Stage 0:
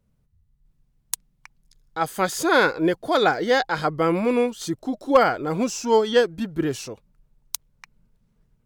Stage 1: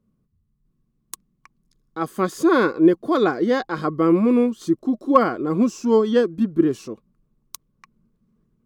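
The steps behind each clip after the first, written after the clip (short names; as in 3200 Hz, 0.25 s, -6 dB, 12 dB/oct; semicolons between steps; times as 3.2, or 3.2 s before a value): small resonant body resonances 230/330/1100 Hz, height 15 dB, ringing for 30 ms; gain -8 dB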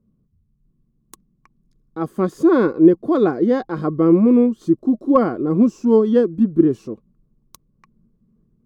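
tilt shelf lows +7.5 dB, about 900 Hz; gain -2 dB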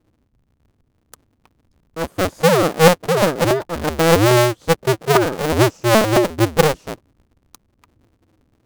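cycle switcher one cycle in 2, inverted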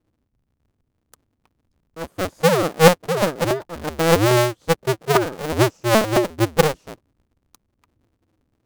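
upward expander 1.5:1, over -22 dBFS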